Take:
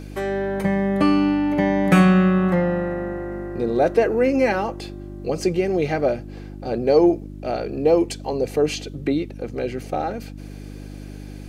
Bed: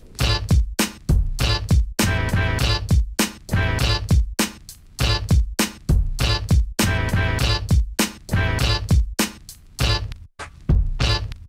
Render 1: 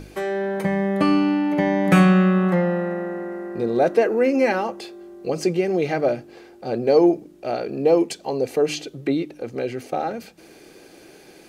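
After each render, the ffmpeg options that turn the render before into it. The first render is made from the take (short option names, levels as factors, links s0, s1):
-af "bandreject=f=50:t=h:w=4,bandreject=f=100:t=h:w=4,bandreject=f=150:t=h:w=4,bandreject=f=200:t=h:w=4,bandreject=f=250:t=h:w=4,bandreject=f=300:t=h:w=4"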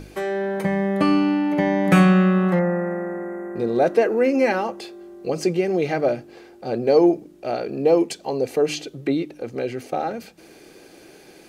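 -filter_complex "[0:a]asettb=1/sr,asplit=3[s0][s1][s2];[s0]atrim=end=2.594[s3];[s1]atrim=start=2.59:end=3.56,asetpts=PTS-STARTPTS,afade=t=in:d=0.004:c=qsin,afade=t=out:st=0.966:d=0.004:c=qsin,asuperstop=centerf=3900:order=8:qfactor=0.99[s4];[s2]atrim=start=3.556[s5];[s3][s4]acrossfade=d=0.004:c1=hsin:c2=qsin[s6];[s6][s5]acrossfade=d=0.004:c1=qsin:c2=hsin"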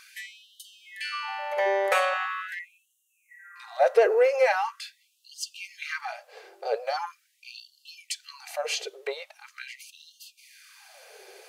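-af "asoftclip=type=tanh:threshold=0.376,afftfilt=real='re*gte(b*sr/1024,370*pow(2800/370,0.5+0.5*sin(2*PI*0.42*pts/sr)))':imag='im*gte(b*sr/1024,370*pow(2800/370,0.5+0.5*sin(2*PI*0.42*pts/sr)))':win_size=1024:overlap=0.75"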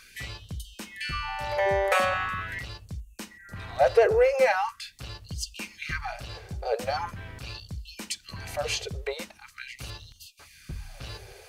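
-filter_complex "[1:a]volume=0.0944[s0];[0:a][s0]amix=inputs=2:normalize=0"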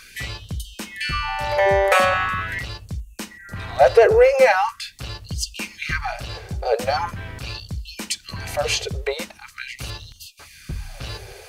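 -af "volume=2.37,alimiter=limit=0.708:level=0:latency=1"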